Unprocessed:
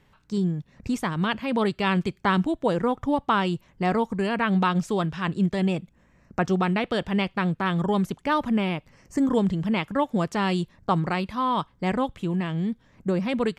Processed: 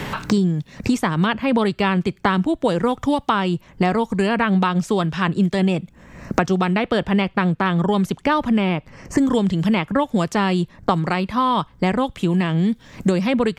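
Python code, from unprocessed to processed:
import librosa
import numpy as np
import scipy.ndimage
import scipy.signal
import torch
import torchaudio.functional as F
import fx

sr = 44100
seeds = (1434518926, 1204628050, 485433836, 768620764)

y = fx.high_shelf(x, sr, hz=6700.0, db=-6.0, at=(7.55, 9.59))
y = fx.band_squash(y, sr, depth_pct=100)
y = F.gain(torch.from_numpy(y), 4.5).numpy()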